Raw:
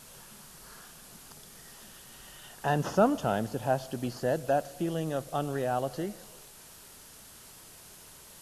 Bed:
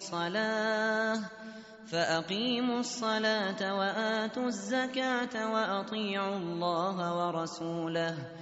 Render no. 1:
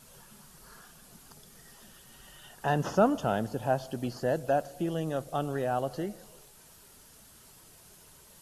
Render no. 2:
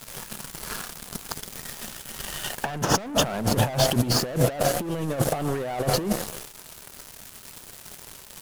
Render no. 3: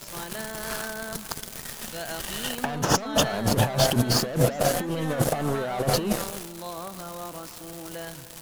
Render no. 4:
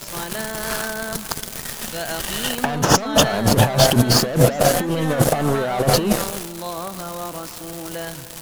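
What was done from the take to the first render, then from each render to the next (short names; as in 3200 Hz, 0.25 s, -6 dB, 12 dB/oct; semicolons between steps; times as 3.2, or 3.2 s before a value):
denoiser 6 dB, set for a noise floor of -52 dBFS
sample leveller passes 5; negative-ratio compressor -23 dBFS, ratio -0.5
add bed -6 dB
gain +7 dB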